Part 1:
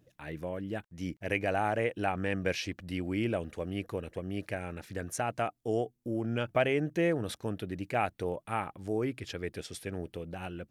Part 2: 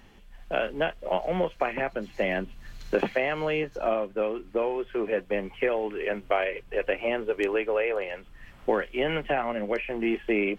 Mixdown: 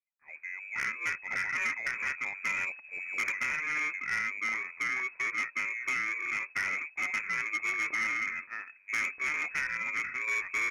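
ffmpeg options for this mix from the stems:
-filter_complex "[0:a]equalizer=f=620:t=o:w=2.9:g=9,acompressor=threshold=-26dB:ratio=4,volume=-8.5dB[a];[1:a]acrusher=samples=24:mix=1:aa=0.000001,adelay=250,volume=-2.5dB[b];[a][b]amix=inputs=2:normalize=0,lowpass=f=2.2k:t=q:w=0.5098,lowpass=f=2.2k:t=q:w=0.6013,lowpass=f=2.2k:t=q:w=0.9,lowpass=f=2.2k:t=q:w=2.563,afreqshift=-2600,asoftclip=type=tanh:threshold=-25.5dB,agate=range=-33dB:threshold=-37dB:ratio=3:detection=peak"

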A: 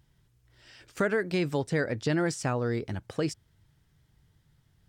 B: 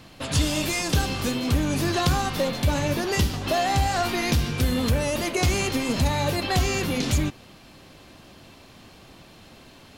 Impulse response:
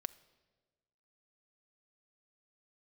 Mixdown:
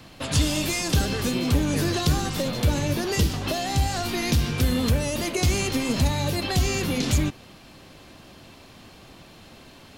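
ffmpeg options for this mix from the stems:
-filter_complex "[0:a]volume=-4dB[a];[1:a]volume=1dB[b];[a][b]amix=inputs=2:normalize=0,acrossover=split=380|3000[c][d][e];[d]acompressor=threshold=-30dB:ratio=6[f];[c][f][e]amix=inputs=3:normalize=0"

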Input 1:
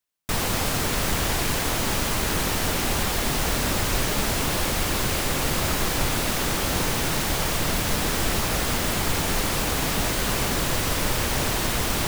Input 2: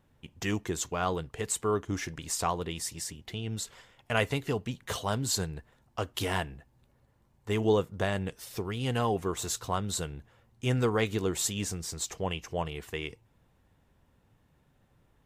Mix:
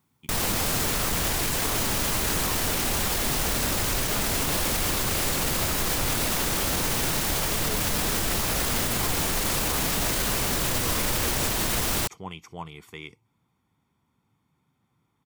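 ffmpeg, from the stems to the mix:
-filter_complex "[0:a]highshelf=f=5.7k:g=5.5,volume=2.5dB[a];[1:a]highpass=140,aecho=1:1:0.9:0.65,volume=-4.5dB[b];[a][b]amix=inputs=2:normalize=0,alimiter=limit=-16dB:level=0:latency=1"

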